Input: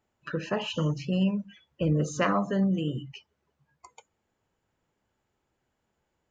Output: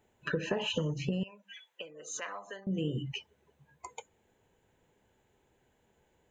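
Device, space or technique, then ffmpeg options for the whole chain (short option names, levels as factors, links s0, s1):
serial compression, leveller first: -filter_complex "[0:a]acompressor=threshold=0.0447:ratio=2.5,acompressor=threshold=0.0158:ratio=10,asettb=1/sr,asplit=3[s0][s1][s2];[s0]atrim=end=1.234[s3];[s1]atrim=start=1.23:end=2.67,asetpts=PTS-STARTPTS,afade=t=in:d=0.004:c=qsin,afade=t=out:st=1.436:d=0.004:c=qsin,highpass=990[s4];[s2]atrim=start=2.666[s5];[s3][s4]acrossfade=d=0.004:c1=hsin:c2=qsin[s6];[s6][s5]acrossfade=d=0.004:c1=qsin:c2=hsin,superequalizer=7b=1.58:10b=0.501:14b=0.447,volume=2.11"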